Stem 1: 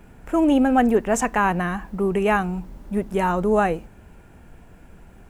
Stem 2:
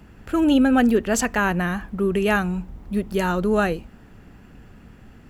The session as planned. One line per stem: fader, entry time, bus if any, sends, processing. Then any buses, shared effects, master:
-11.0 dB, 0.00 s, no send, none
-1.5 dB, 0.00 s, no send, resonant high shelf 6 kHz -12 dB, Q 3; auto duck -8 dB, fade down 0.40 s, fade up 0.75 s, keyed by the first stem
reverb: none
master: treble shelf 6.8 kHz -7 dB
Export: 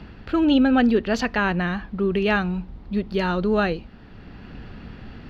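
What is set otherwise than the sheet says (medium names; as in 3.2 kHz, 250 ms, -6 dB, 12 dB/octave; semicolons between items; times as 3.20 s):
stem 1 -11.0 dB -> -22.5 dB; stem 2 -1.5 dB -> +7.0 dB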